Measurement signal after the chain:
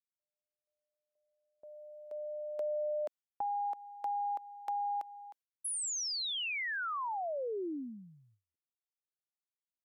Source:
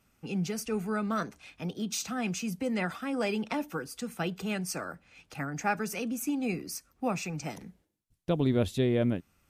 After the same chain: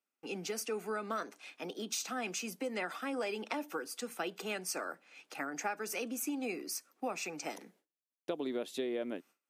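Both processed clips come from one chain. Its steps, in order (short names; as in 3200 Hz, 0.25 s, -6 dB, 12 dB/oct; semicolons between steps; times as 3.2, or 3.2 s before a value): HPF 290 Hz 24 dB/oct; gate with hold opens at -57 dBFS; compressor 6:1, threshold -33 dBFS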